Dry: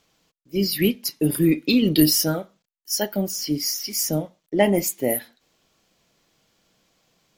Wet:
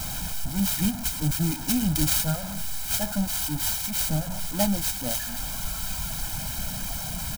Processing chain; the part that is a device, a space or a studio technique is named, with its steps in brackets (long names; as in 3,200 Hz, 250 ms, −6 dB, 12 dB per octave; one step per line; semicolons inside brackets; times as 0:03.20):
reverb reduction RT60 1.3 s
early CD player with a faulty converter (converter with a step at zero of −22 dBFS; converter with an unsteady clock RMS 0.091 ms)
octave-band graphic EQ 125/250/500/2,000 Hz −6/−4/−12/−5 dB
low-shelf EQ 230 Hz +10.5 dB
comb filter 1.3 ms, depth 92%
level −6 dB